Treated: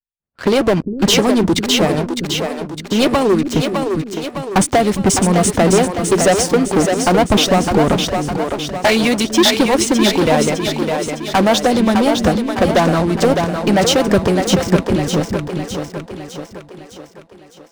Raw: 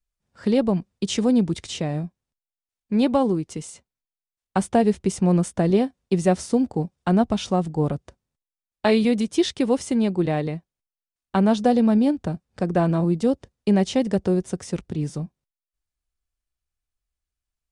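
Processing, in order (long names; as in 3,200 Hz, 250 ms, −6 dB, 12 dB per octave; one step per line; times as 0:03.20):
low-pass that shuts in the quiet parts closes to 2,800 Hz, open at −15.5 dBFS
harmonic and percussive parts rebalanced harmonic −15 dB
leveller curve on the samples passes 5
echo with a time of its own for lows and highs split 330 Hz, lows 403 ms, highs 608 ms, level −5 dB
level +1 dB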